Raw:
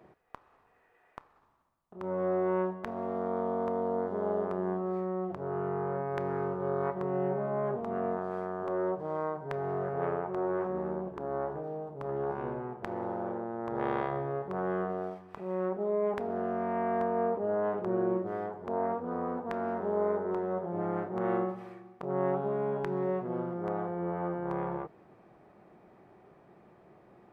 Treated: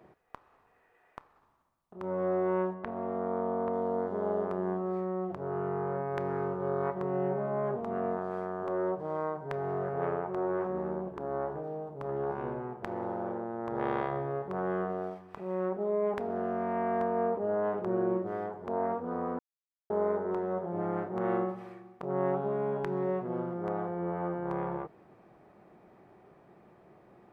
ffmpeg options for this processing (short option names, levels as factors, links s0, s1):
-filter_complex "[0:a]asettb=1/sr,asplit=3[s0][s1][s2];[s0]atrim=end=2.744[s3];[s1]atrim=start=2.74:end=3.73,asetpts=PTS-STARTPTS,afade=t=in:d=0.004:c=qsin,afade=t=out:st=0.986:d=0.004:c=qsin,lowpass=2800[s4];[s2]atrim=start=3.726[s5];[s3][s4]acrossfade=d=0.004:c1=hsin:c2=qsin[s6];[s6][s5]acrossfade=d=0.004:c1=qsin:c2=hsin,asplit=3[s7][s8][s9];[s7]atrim=end=19.39,asetpts=PTS-STARTPTS,afade=t=out:st=19.386:d=0.004:c=hsin[s10];[s8]atrim=start=19.39:end=19.9,asetpts=PTS-STARTPTS,volume=0[s11];[s9]atrim=start=19.9,asetpts=PTS-STARTPTS,afade=t=in:d=0.004:c=hsin[s12];[s10][s11][s12]concat=n=3:v=0:a=1"